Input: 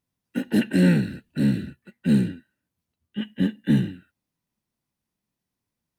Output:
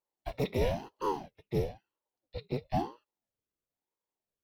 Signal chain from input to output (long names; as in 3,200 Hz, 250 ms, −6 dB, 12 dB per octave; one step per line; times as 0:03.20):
wrong playback speed 33 rpm record played at 45 rpm
ring modulator whose carrier an LFO sweeps 420 Hz, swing 75%, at 1 Hz
level −8 dB